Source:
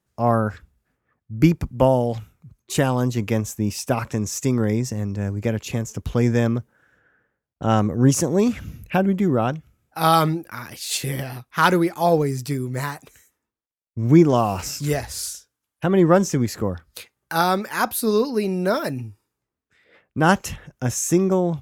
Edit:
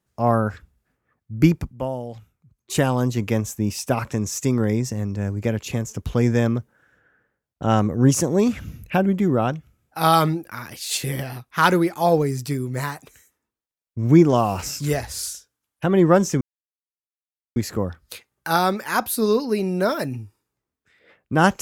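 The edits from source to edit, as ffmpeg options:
-filter_complex "[0:a]asplit=4[a][b][c][d];[a]atrim=end=1.75,asetpts=PTS-STARTPTS,afade=t=out:st=1.58:d=0.17:silence=0.298538[e];[b]atrim=start=1.75:end=2.57,asetpts=PTS-STARTPTS,volume=-10.5dB[f];[c]atrim=start=2.57:end=16.41,asetpts=PTS-STARTPTS,afade=t=in:d=0.17:silence=0.298538,afade=t=out:st=13.836:d=0.004:c=hsin,apad=pad_dur=1.15[g];[d]atrim=start=16.41,asetpts=PTS-STARTPTS,afade=t=in:d=0.004:c=hsin[h];[e][f][g][h]concat=n=4:v=0:a=1"

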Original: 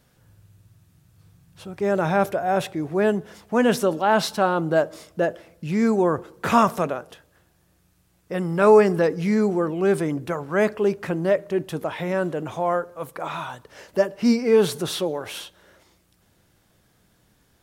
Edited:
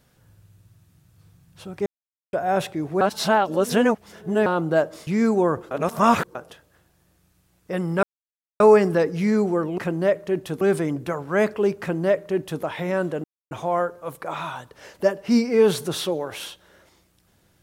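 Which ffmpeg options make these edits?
-filter_complex "[0:a]asplit=12[a][b][c][d][e][f][g][h][i][j][k][l];[a]atrim=end=1.86,asetpts=PTS-STARTPTS,afade=t=out:st=1.856:d=0.004:c=hsin[m];[b]atrim=start=1.86:end=2.33,asetpts=PTS-STARTPTS,volume=0[n];[c]atrim=start=2.33:end=3.012,asetpts=PTS-STARTPTS,afade=t=in:d=0.004:c=hsin[o];[d]atrim=start=3.008:end=4.462,asetpts=PTS-STARTPTS,areverse[p];[e]atrim=start=4.458:end=5.072[q];[f]atrim=start=5.678:end=6.322[r];[g]atrim=start=6.318:end=6.962,asetpts=PTS-STARTPTS,areverse[s];[h]atrim=start=6.958:end=8.64,asetpts=PTS-STARTPTS,afade=t=out:st=1.678:d=0.004:c=hsin,apad=pad_dur=0.57[t];[i]atrim=start=8.64:end=9.822,asetpts=PTS-STARTPTS,afade=t=in:d=0.004:c=hsin[u];[j]atrim=start=11.008:end=11.842[v];[k]atrim=start=9.818:end=12.45,asetpts=PTS-STARTPTS,afade=t=out:st=2.628:d=0.004:c=hsin,apad=pad_dur=0.27[w];[l]atrim=start=12.45,asetpts=PTS-STARTPTS,afade=t=in:d=0.004:c=hsin[x];[m][n][o]concat=n=3:v=0:a=1[y];[y][p]acrossfade=d=0.004:c1=hsin:c2=hsin[z];[z][q]acrossfade=d=0.004:c1=hsin:c2=hsin[aa];[aa][r]acrossfade=d=0.004:c1=hsin:c2=hsin[ab];[ab][s]acrossfade=d=0.004:c1=hsin:c2=hsin[ac];[t][u]concat=n=2:v=0:a=1[ad];[ac][ad]acrossfade=d=0.004:c1=hsin:c2=hsin[ae];[ae][v]acrossfade=d=0.004:c1=hsin:c2=hsin[af];[w][x]concat=n=2:v=0:a=1[ag];[af][ag]acrossfade=d=0.004:c1=hsin:c2=hsin"

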